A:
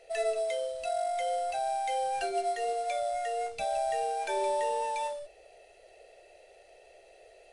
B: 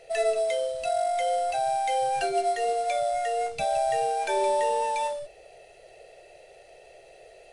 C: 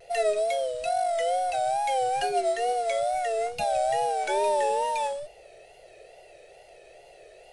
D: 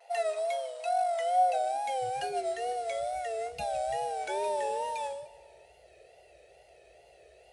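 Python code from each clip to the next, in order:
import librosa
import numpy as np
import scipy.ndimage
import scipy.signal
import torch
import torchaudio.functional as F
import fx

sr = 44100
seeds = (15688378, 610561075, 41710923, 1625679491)

y1 = fx.peak_eq(x, sr, hz=140.0, db=11.5, octaves=0.7)
y1 = F.gain(torch.from_numpy(y1), 5.0).numpy()
y2 = fx.vibrato(y1, sr, rate_hz=2.3, depth_cents=86.0)
y3 = fx.filter_sweep_highpass(y2, sr, from_hz=870.0, to_hz=62.0, start_s=1.34, end_s=2.3, q=4.4)
y3 = fx.echo_feedback(y3, sr, ms=150, feedback_pct=55, wet_db=-19.0)
y3 = F.gain(torch.from_numpy(y3), -7.0).numpy()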